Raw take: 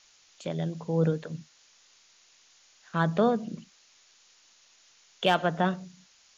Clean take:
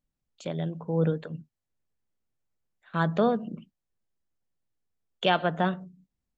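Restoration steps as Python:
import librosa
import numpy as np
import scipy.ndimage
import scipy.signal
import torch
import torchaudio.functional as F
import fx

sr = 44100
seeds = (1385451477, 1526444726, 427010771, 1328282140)

y = fx.fix_declip(x, sr, threshold_db=-12.0)
y = fx.noise_reduce(y, sr, print_start_s=3.7, print_end_s=4.2, reduce_db=22.0)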